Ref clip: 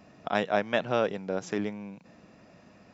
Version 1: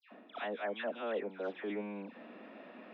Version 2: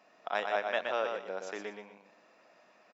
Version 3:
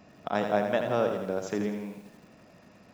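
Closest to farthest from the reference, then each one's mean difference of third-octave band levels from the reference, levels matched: 3, 2, 1; 4.0, 6.0, 10.5 dB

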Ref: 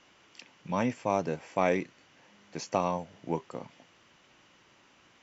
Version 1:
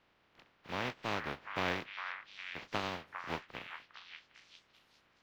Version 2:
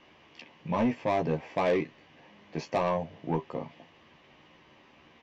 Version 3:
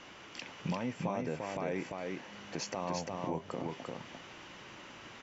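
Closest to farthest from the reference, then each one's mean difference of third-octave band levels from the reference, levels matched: 2, 1, 3; 3.0, 7.0, 11.0 dB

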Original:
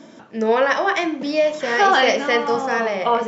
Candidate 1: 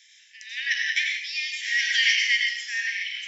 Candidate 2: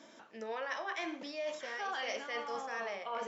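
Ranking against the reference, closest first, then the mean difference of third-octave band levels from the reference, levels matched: 2, 1; 4.5, 18.5 dB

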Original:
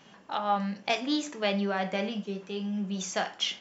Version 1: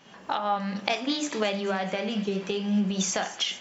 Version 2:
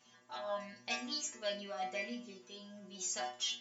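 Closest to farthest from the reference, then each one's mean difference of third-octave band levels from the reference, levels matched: 1, 2; 3.5, 5.0 dB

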